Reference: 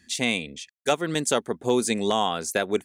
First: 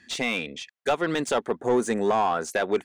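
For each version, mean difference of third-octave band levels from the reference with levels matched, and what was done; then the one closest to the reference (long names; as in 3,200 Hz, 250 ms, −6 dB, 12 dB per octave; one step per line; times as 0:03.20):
4.5 dB: gain on a spectral selection 0:01.61–0:02.45, 2,000–5,700 Hz −11 dB
high-shelf EQ 9,500 Hz −6 dB
brickwall limiter −13 dBFS, peak gain reduction 3.5 dB
mid-hump overdrive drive 15 dB, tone 1,700 Hz, clips at −13 dBFS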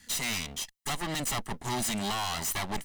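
11.5 dB: lower of the sound and its delayed copy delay 1 ms
high-shelf EQ 2,100 Hz +9 dB
in parallel at +1 dB: brickwall limiter −14.5 dBFS, peak gain reduction 7 dB
on the sum: hard clipping −21.5 dBFS, distortion −5 dB
level −7 dB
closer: first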